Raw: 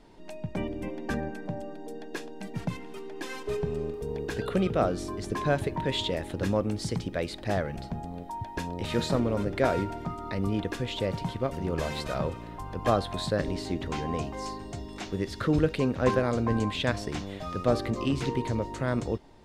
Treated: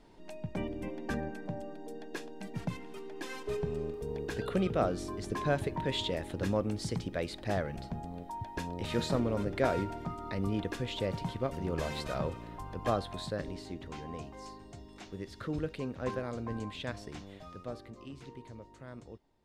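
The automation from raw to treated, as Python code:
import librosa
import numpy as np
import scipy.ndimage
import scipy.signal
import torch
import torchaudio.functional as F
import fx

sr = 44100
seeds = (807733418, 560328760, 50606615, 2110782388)

y = fx.gain(x, sr, db=fx.line((12.56, -4.0), (13.78, -11.0), (17.37, -11.0), (17.84, -19.0)))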